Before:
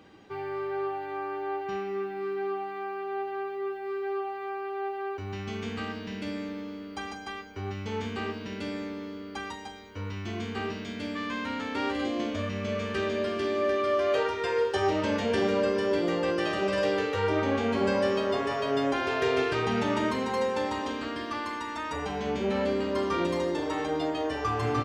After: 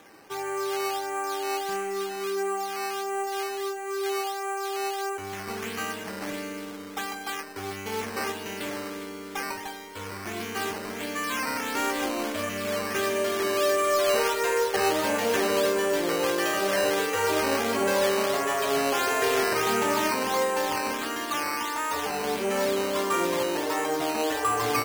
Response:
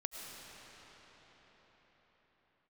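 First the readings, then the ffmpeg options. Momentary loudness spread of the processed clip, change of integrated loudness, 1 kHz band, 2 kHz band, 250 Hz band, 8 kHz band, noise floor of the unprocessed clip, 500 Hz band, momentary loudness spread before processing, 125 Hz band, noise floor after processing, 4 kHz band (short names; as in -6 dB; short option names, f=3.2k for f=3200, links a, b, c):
10 LU, +3.0 dB, +4.5 dB, +5.0 dB, -1.5 dB, +16.5 dB, -40 dBFS, +1.5 dB, 10 LU, -6.5 dB, -38 dBFS, +6.0 dB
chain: -filter_complex "[0:a]bandreject=f=3.5k:w=12,asplit=2[a][b];[b]highpass=f=720:p=1,volume=11dB,asoftclip=type=tanh:threshold=-13.5dB[c];[a][c]amix=inputs=2:normalize=0,lowpass=f=6.1k:p=1,volume=-6dB,asplit=2[d][e];[1:a]atrim=start_sample=2205,asetrate=66150,aresample=44100[f];[e][f]afir=irnorm=-1:irlink=0,volume=-5.5dB[g];[d][g]amix=inputs=2:normalize=0,acrusher=samples=9:mix=1:aa=0.000001:lfo=1:lforange=9:lforate=1.5,lowshelf=f=130:g=-7,volume=-1.5dB"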